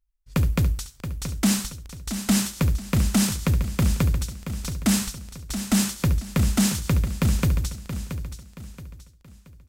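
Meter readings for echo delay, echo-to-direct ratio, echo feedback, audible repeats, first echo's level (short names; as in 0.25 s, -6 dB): 70 ms, -7.5 dB, no steady repeat, 6, -12.0 dB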